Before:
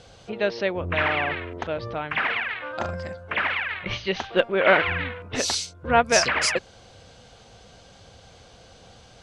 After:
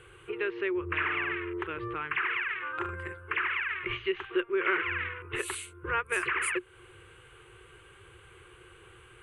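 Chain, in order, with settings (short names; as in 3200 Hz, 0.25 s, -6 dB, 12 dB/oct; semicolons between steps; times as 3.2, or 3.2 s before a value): EQ curve 140 Hz 0 dB, 240 Hz -25 dB, 360 Hz +15 dB, 650 Hz -19 dB, 1100 Hz +8 dB, 1900 Hz +7 dB, 2800 Hz +6 dB, 5400 Hz -28 dB, 9100 Hz +12 dB, 13000 Hz +7 dB; compressor 2:1, threshold -28 dBFS, peak gain reduction 11 dB; gain -5 dB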